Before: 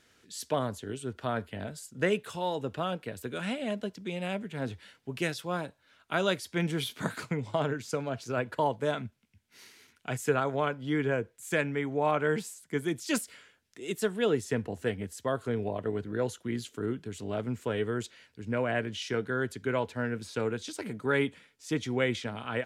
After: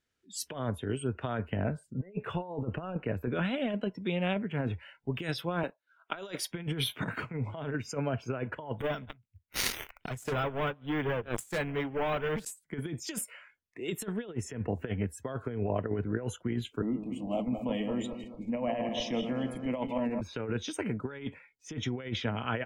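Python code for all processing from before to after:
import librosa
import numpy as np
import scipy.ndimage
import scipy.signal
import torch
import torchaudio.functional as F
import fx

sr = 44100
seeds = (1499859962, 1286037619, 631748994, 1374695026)

y = fx.chain(x, sr, fx.high_shelf(hz=2800.0, db=-11.0),
    fx.over_compress(threshold_db=-37.0, ratio=-0.5), at=(1.52, 3.45))
y = fx.chain(y, sr, fx.highpass(hz=290.0, slope=12),
    fx.leveller(passes=1), at=(5.63, 6.51))
y = fx.chain(y, sr, fx.echo_single(ms=144, db=-23.5),
    fx.leveller(passes=5),
    fx.over_compress(threshold_db=-25.0, ratio=-0.5), at=(8.8, 12.45))
y = fx.chain(y, sr, fx.reverse_delay_fb(ms=109, feedback_pct=62, wet_db=-6.5),
    fx.fixed_phaser(hz=400.0, stages=6), at=(16.82, 20.21))
y = fx.noise_reduce_blind(y, sr, reduce_db=23)
y = fx.low_shelf(y, sr, hz=77.0, db=11.0)
y = fx.over_compress(y, sr, threshold_db=-32.0, ratio=-0.5)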